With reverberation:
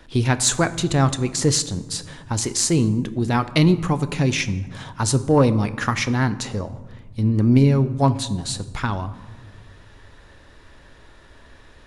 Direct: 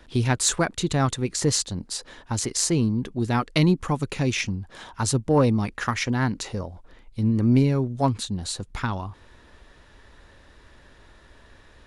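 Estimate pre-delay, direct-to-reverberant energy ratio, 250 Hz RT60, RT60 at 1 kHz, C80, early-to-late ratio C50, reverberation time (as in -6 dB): 6 ms, 11.5 dB, 2.0 s, 1.3 s, 17.0 dB, 15.5 dB, 1.3 s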